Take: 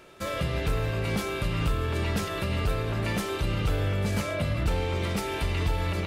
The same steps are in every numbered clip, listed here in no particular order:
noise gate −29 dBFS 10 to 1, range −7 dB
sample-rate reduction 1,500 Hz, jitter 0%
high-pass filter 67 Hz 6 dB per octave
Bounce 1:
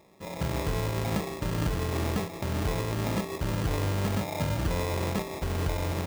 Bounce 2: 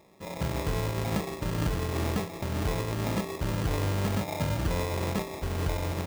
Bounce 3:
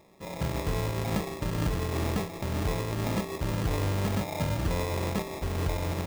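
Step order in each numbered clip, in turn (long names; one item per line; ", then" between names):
noise gate, then sample-rate reduction, then high-pass filter
sample-rate reduction, then high-pass filter, then noise gate
high-pass filter, then noise gate, then sample-rate reduction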